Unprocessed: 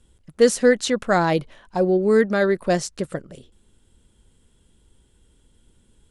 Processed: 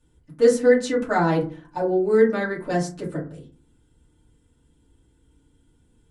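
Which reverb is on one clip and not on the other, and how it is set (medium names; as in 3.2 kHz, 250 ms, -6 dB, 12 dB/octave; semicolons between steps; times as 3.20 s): FDN reverb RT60 0.37 s, low-frequency decay 1.55×, high-frequency decay 0.4×, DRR -7 dB; trim -11 dB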